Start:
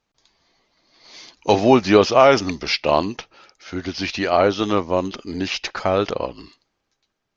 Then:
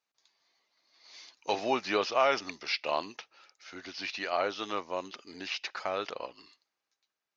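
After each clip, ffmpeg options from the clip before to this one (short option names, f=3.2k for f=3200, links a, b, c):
-filter_complex "[0:a]bandreject=f=3.2k:w=23,acrossover=split=5500[a][b];[b]acompressor=threshold=-47dB:ratio=4:attack=1:release=60[c];[a][c]amix=inputs=2:normalize=0,highpass=f=1.1k:p=1,volume=-8dB"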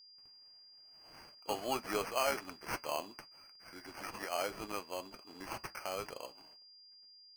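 -af "acrusher=samples=12:mix=1:aa=0.000001,flanger=delay=6:depth=2.5:regen=-73:speed=1.1:shape=sinusoidal,aeval=exprs='val(0)+0.002*sin(2*PI*4800*n/s)':c=same,volume=-2.5dB"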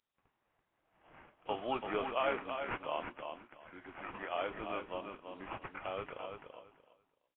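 -filter_complex "[0:a]asplit=2[a][b];[b]aecho=0:1:336|672|1008:0.473|0.0946|0.0189[c];[a][c]amix=inputs=2:normalize=0" -ar 8000 -c:a nellymoser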